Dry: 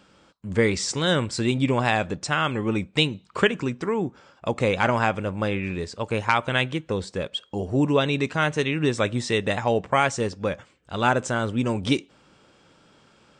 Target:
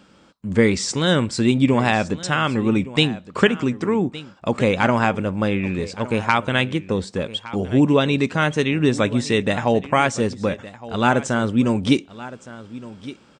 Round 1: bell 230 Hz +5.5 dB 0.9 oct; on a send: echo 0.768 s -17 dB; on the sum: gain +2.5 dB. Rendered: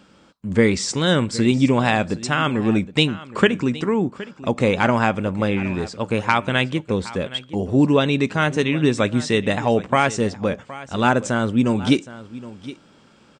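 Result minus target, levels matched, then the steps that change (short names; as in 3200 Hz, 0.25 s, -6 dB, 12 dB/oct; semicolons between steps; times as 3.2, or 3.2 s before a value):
echo 0.397 s early
change: echo 1.165 s -17 dB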